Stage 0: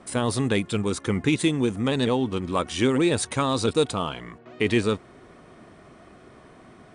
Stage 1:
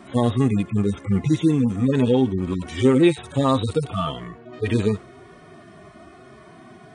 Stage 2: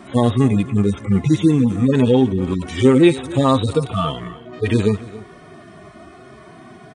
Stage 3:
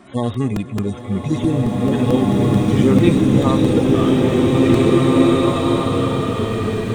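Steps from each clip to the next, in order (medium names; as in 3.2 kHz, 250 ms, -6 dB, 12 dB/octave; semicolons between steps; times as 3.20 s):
harmonic-percussive separation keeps harmonic; trim +6.5 dB
delay 279 ms -18.5 dB; trim +4 dB
crackling interface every 0.22 s, samples 128, repeat, from 0.34 s; swelling reverb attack 2230 ms, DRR -6 dB; trim -5 dB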